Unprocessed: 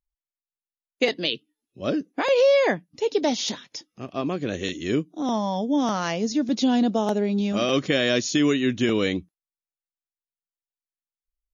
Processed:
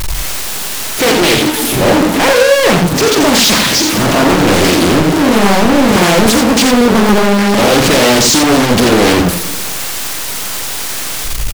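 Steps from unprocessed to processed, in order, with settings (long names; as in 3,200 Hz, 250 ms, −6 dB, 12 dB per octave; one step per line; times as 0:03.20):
converter with a step at zero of −26.5 dBFS
leveller curve on the samples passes 3
gain into a clipping stage and back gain 16 dB
multi-tap delay 45/87 ms −7/−5 dB
on a send at −18 dB: convolution reverb RT60 1.5 s, pre-delay 108 ms
on the sum: highs frequency-modulated by the lows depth 0.91 ms
level +6.5 dB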